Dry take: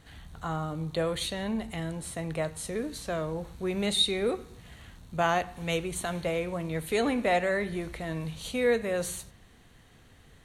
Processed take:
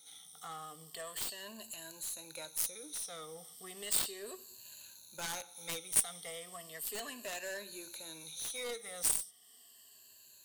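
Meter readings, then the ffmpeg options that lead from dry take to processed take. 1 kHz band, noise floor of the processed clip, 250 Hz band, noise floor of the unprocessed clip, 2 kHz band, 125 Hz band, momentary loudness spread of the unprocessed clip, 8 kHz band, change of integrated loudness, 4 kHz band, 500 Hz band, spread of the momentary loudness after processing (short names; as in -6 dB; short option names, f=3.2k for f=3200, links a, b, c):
-15.5 dB, -60 dBFS, -22.5 dB, -57 dBFS, -12.0 dB, -24.0 dB, 12 LU, +4.5 dB, -7.5 dB, -9.5 dB, -18.0 dB, 19 LU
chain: -filter_complex "[0:a]afftfilt=real='re*pow(10,17/40*sin(2*PI*(1.4*log(max(b,1)*sr/1024/100)/log(2)-(-0.35)*(pts-256)/sr)))':imag='im*pow(10,17/40*sin(2*PI*(1.4*log(max(b,1)*sr/1024/100)/log(2)-(-0.35)*(pts-256)/sr)))':win_size=1024:overlap=0.75,acrossover=split=670|2600[a][b][c];[b]adynamicsmooth=sensitivity=2.5:basefreq=1.2k[d];[a][d][c]amix=inputs=3:normalize=0,aderivative,asplit=2[e][f];[f]acompressor=threshold=-52dB:ratio=6,volume=-1.5dB[g];[e][g]amix=inputs=2:normalize=0,lowshelf=f=64:g=-11.5,aeval=exprs='0.133*(cos(1*acos(clip(val(0)/0.133,-1,1)))-cos(1*PI/2))+0.0376*(cos(7*acos(clip(val(0)/0.133,-1,1)))-cos(7*PI/2))+0.00211*(cos(8*acos(clip(val(0)/0.133,-1,1)))-cos(8*PI/2))':c=same,volume=1.5dB"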